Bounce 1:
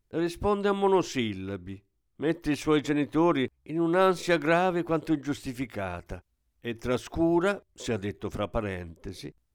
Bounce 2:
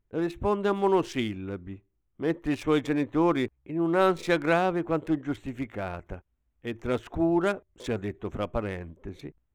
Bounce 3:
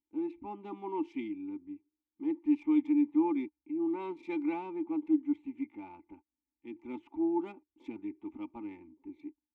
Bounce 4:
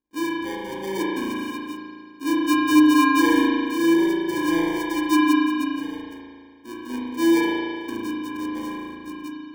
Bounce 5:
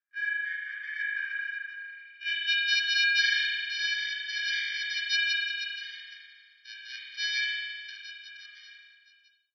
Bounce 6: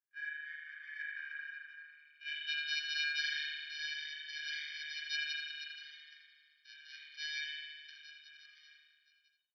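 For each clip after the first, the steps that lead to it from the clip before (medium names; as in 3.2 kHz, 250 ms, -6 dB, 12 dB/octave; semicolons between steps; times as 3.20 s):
local Wiener filter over 9 samples
vowel filter u; comb 3.4 ms, depth 63%; trim -2 dB
median filter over 25 samples; sample-and-hold 33×; spring tank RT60 2 s, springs 36 ms, chirp 55 ms, DRR -5.5 dB; trim +5.5 dB
fade out at the end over 2.47 s; low-pass sweep 1.6 kHz -> 4.6 kHz, 1.76–2.74 s; FFT band-pass 1.2–6.1 kHz
AM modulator 150 Hz, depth 25%; delay 82 ms -11 dB; trim -9 dB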